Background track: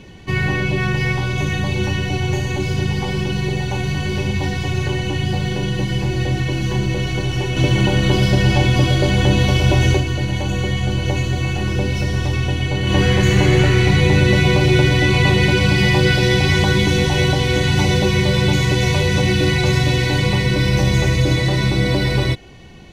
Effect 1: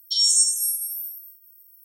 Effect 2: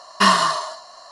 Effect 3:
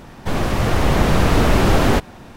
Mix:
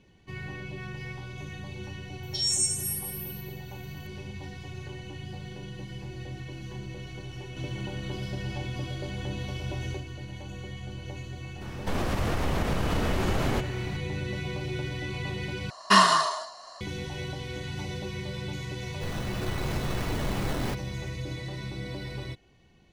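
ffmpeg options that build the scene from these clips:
-filter_complex "[3:a]asplit=2[s0][s1];[0:a]volume=0.106[s2];[s0]acompressor=threshold=0.1:ratio=6:attack=3.2:release=140:knee=1:detection=peak[s3];[s1]acrusher=samples=15:mix=1:aa=0.000001:lfo=1:lforange=9:lforate=2.9[s4];[s2]asplit=2[s5][s6];[s5]atrim=end=15.704[s7];[2:a]atrim=end=1.11,asetpts=PTS-STARTPTS,volume=0.708[s8];[s6]atrim=start=16.806[s9];[1:a]atrim=end=1.84,asetpts=PTS-STARTPTS,volume=0.398,afade=t=in:d=0.004:c=hsin,afade=t=out:st=1.836:d=0.004:c=hsin,adelay=2230[s10];[s3]atrim=end=2.36,asetpts=PTS-STARTPTS,volume=0.668,afade=t=in:d=0.004:c=hsin,afade=t=out:st=2.356:d=0.004:c=hsin,adelay=11610[s11];[s4]atrim=end=2.36,asetpts=PTS-STARTPTS,volume=0.15,afade=t=in:d=0.004:c=hsin,afade=t=out:st=2.356:d=0.004:c=hsin,adelay=18750[s12];[s7][s8]acrossfade=d=0.004:c1=hsin:c2=hsin[s13];[s13][s9]acrossfade=d=0.004:c1=hsin:c2=hsin[s14];[s14][s10][s11][s12]amix=inputs=4:normalize=0"

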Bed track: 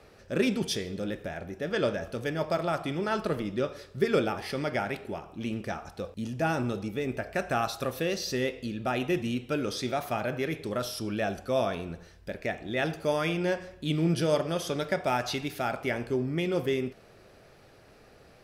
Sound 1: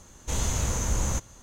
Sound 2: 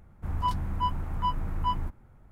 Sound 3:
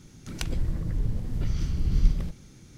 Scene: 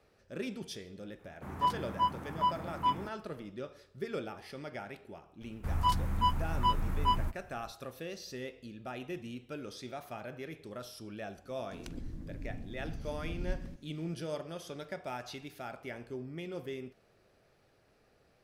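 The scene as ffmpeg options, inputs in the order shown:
-filter_complex "[2:a]asplit=2[s0][s1];[0:a]volume=0.237[s2];[s0]highpass=180[s3];[s1]highshelf=f=2400:g=9[s4];[3:a]equalizer=f=270:w=2.3:g=14[s5];[s3]atrim=end=2.31,asetpts=PTS-STARTPTS,volume=0.944,afade=t=in:d=0.004:c=hsin,afade=t=out:st=2.306:d=0.004:c=hsin,adelay=1190[s6];[s4]atrim=end=2.31,asetpts=PTS-STARTPTS,volume=0.841,afade=t=in:d=0.004:c=hsin,afade=t=out:st=2.306:d=0.004:c=hsin,adelay=238581S[s7];[s5]atrim=end=2.77,asetpts=PTS-STARTPTS,volume=0.158,afade=t=in:d=0.004:c=hsin,afade=t=out:st=2.766:d=0.004:c=hsin,adelay=11450[s8];[s2][s6][s7][s8]amix=inputs=4:normalize=0"

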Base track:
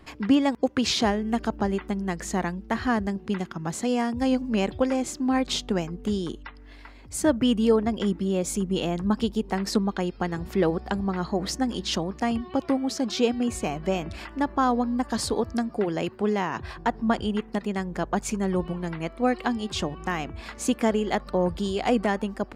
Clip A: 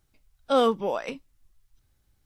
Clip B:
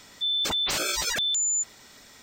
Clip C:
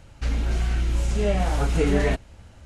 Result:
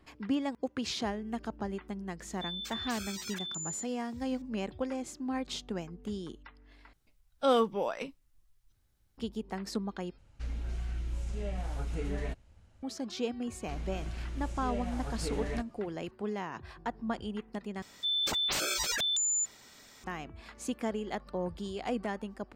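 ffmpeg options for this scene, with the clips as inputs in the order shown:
-filter_complex "[2:a]asplit=2[s0][s1];[3:a]asplit=2[s2][s3];[0:a]volume=0.282[s4];[s0]highpass=1200[s5];[s2]lowshelf=f=110:g=5.5[s6];[s4]asplit=4[s7][s8][s9][s10];[s7]atrim=end=6.934[s11];[1:a]atrim=end=2.25,asetpts=PTS-STARTPTS,volume=0.596[s12];[s8]atrim=start=9.176:end=10.184[s13];[s6]atrim=end=2.65,asetpts=PTS-STARTPTS,volume=0.15[s14];[s9]atrim=start=12.826:end=17.824[s15];[s1]atrim=end=2.22,asetpts=PTS-STARTPTS,volume=0.596[s16];[s10]atrim=start=20.036[s17];[s5]atrim=end=2.22,asetpts=PTS-STARTPTS,volume=0.2,afade=t=in:d=0.004:c=hsin,afade=t=out:st=2.216:d=0.004:c=hsin,adelay=2200[s18];[s3]atrim=end=2.65,asetpts=PTS-STARTPTS,volume=0.178,afade=t=in:d=0.004:c=hsin,afade=t=out:st=2.646:d=0.004:c=hsin,adelay=13460[s19];[s11][s12]acrossfade=d=0.004:c1=hsin:c2=hsin[s20];[s20][s13]acrossfade=d=0.004:c1=hsin:c2=hsin[s21];[s21][s14]acrossfade=d=0.004:c1=hsin:c2=hsin[s22];[s22][s15]acrossfade=d=0.004:c1=hsin:c2=hsin[s23];[s23][s16]acrossfade=d=0.004:c1=hsin:c2=hsin[s24];[s24][s17]acrossfade=d=0.004:c1=hsin:c2=hsin[s25];[s25][s18][s19]amix=inputs=3:normalize=0"

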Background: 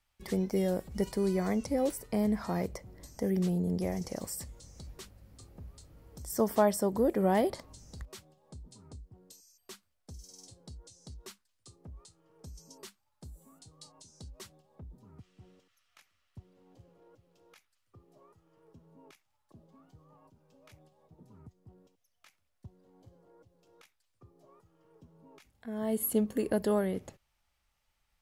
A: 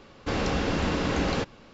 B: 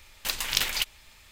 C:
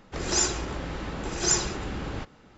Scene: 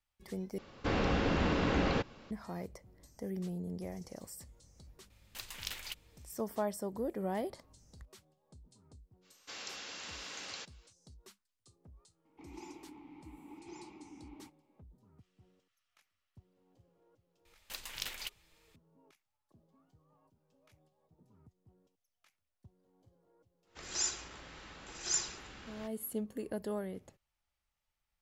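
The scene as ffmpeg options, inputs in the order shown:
-filter_complex "[1:a]asplit=2[s0][s1];[2:a]asplit=2[s2][s3];[3:a]asplit=2[s4][s5];[0:a]volume=0.335[s6];[s0]acrossover=split=4200[s7][s8];[s8]acompressor=threshold=0.00282:ratio=4:attack=1:release=60[s9];[s7][s9]amix=inputs=2:normalize=0[s10];[s1]aderivative[s11];[s4]asplit=3[s12][s13][s14];[s12]bandpass=f=300:t=q:w=8,volume=1[s15];[s13]bandpass=f=870:t=q:w=8,volume=0.501[s16];[s14]bandpass=f=2240:t=q:w=8,volume=0.355[s17];[s15][s16][s17]amix=inputs=3:normalize=0[s18];[s3]equalizer=f=510:w=1.5:g=2[s19];[s5]tiltshelf=f=970:g=-7[s20];[s6]asplit=2[s21][s22];[s21]atrim=end=0.584[s23];[s10]atrim=end=1.73,asetpts=PTS-STARTPTS,volume=0.631[s24];[s22]atrim=start=2.306[s25];[s2]atrim=end=1.31,asetpts=PTS-STARTPTS,volume=0.158,afade=t=in:d=0.004:c=hsin,afade=t=out:st=1.306:d=0.004:c=hsin,adelay=5100[s26];[s11]atrim=end=1.73,asetpts=PTS-STARTPTS,volume=0.708,afade=t=in:d=0.05,afade=t=out:st=1.68:d=0.05,adelay=9210[s27];[s18]atrim=end=2.57,asetpts=PTS-STARTPTS,volume=0.376,afade=t=in:d=0.004:c=hsin,afade=t=out:st=2.566:d=0.004:c=hsin,adelay=12250[s28];[s19]atrim=end=1.31,asetpts=PTS-STARTPTS,volume=0.178,afade=t=in:d=0.004:c=hsin,afade=t=out:st=1.306:d=0.004:c=hsin,adelay=17450[s29];[s20]atrim=end=2.57,asetpts=PTS-STARTPTS,volume=0.168,afade=t=in:d=0.1,afade=t=out:st=2.47:d=0.1,adelay=23630[s30];[s23][s24]acrossfade=d=0.004:c1=hsin:c2=hsin[s31];[s31][s25]acrossfade=d=0.004:c1=hsin:c2=hsin[s32];[s32][s26][s27][s28][s29][s30]amix=inputs=6:normalize=0"

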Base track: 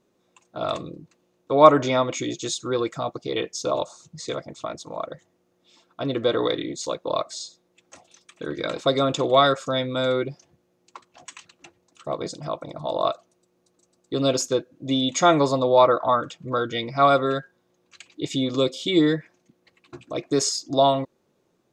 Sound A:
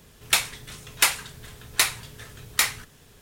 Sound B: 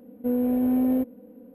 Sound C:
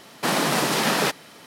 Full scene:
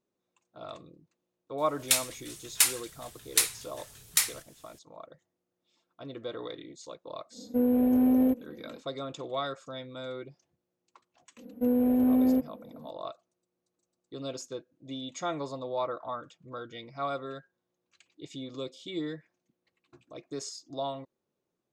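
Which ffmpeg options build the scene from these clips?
-filter_complex "[2:a]asplit=2[s0][s1];[0:a]volume=0.158[s2];[1:a]equalizer=f=9900:w=0.31:g=14,atrim=end=3.21,asetpts=PTS-STARTPTS,volume=0.211,afade=t=in:d=0.004:c=hsin,afade=t=out:st=3.206:d=0.004:c=hsin,adelay=1580[s3];[s0]atrim=end=1.54,asetpts=PTS-STARTPTS,volume=0.944,afade=t=in:d=0.1,afade=t=out:st=1.44:d=0.1,adelay=321930S[s4];[s1]atrim=end=1.54,asetpts=PTS-STARTPTS,volume=0.891,afade=t=in:d=0.004:c=hsin,afade=t=out:st=1.536:d=0.004:c=hsin,adelay=11370[s5];[s2][s3][s4][s5]amix=inputs=4:normalize=0"

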